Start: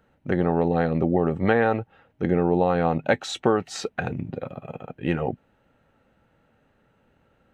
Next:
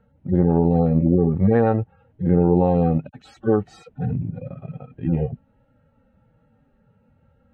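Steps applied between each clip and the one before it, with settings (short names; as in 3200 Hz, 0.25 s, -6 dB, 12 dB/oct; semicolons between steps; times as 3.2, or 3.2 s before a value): median-filter separation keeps harmonic; tilt -3 dB/oct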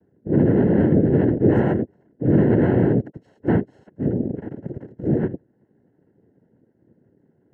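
noise vocoder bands 3; running mean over 37 samples; gain +2.5 dB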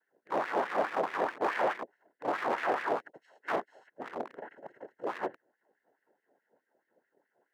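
overloaded stage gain 19.5 dB; LFO high-pass sine 4.7 Hz 610–2000 Hz; gain -3 dB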